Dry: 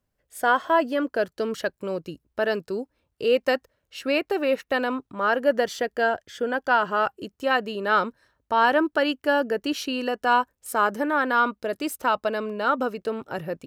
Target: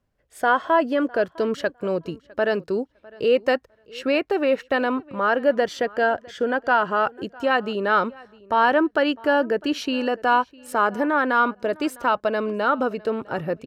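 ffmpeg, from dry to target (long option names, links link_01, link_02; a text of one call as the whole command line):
ffmpeg -i in.wav -filter_complex "[0:a]aemphasis=mode=reproduction:type=50kf,asplit=2[link_01][link_02];[link_02]alimiter=limit=-21dB:level=0:latency=1:release=128,volume=-2.5dB[link_03];[link_01][link_03]amix=inputs=2:normalize=0,asplit=2[link_04][link_05];[link_05]adelay=655,lowpass=frequency=4800:poles=1,volume=-23dB,asplit=2[link_06][link_07];[link_07]adelay=655,lowpass=frequency=4800:poles=1,volume=0.17[link_08];[link_04][link_06][link_08]amix=inputs=3:normalize=0" out.wav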